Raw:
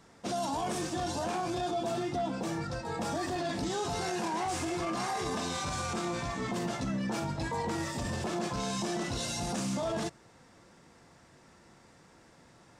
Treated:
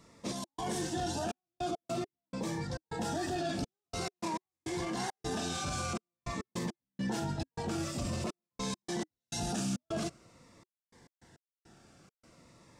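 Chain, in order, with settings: trance gate "xxx.xxxxx..x.x.." 103 bpm -60 dB; Shepard-style phaser falling 0.48 Hz

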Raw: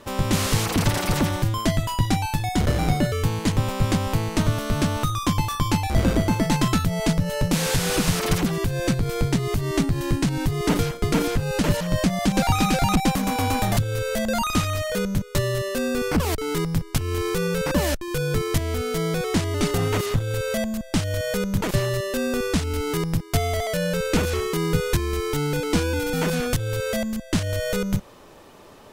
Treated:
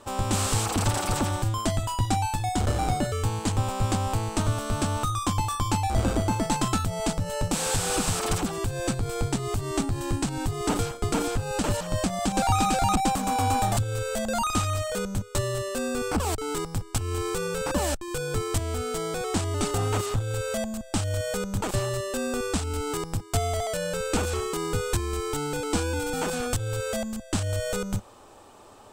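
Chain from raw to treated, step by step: graphic EQ with 31 bands 100 Hz +4 dB, 160 Hz -10 dB, 800 Hz +7 dB, 1.25 kHz +4 dB, 2 kHz -5 dB, 8 kHz +10 dB, 12.5 kHz -4 dB; trim -4.5 dB

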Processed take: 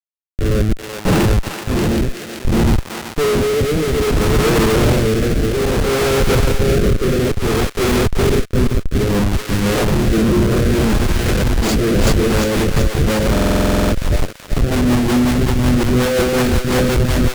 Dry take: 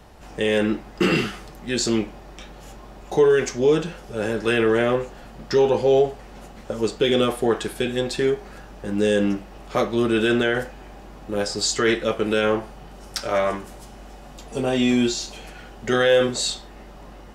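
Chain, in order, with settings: backward echo that repeats 377 ms, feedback 68%, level -0.5 dB; in parallel at -8.5 dB: overload inside the chain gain 22.5 dB; 0.77–1.20 s: on the sum: gate with hold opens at -7 dBFS; 9.39–9.81 s: treble shelf 2.3 kHz +10 dB; Schmitt trigger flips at -16 dBFS; peak limiter -18 dBFS, peak gain reduction 6.5 dB; bass shelf 180 Hz +7 dB; thinning echo 380 ms, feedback 44%, high-pass 1 kHz, level -4 dB; rotary cabinet horn 0.6 Hz, later 5.5 Hz, at 11.63 s; buffer glitch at 13.32 s, samples 2048, times 12; trim +4.5 dB

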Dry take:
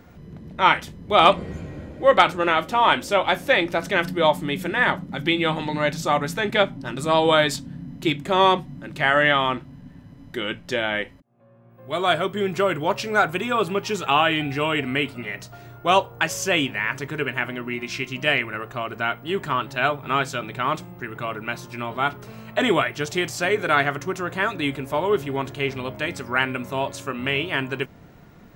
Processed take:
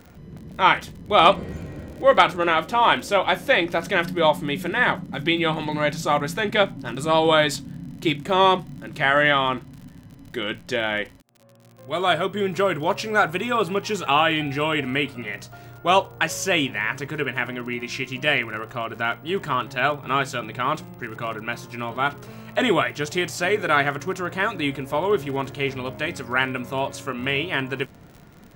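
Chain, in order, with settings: crackle 58 per s -36 dBFS

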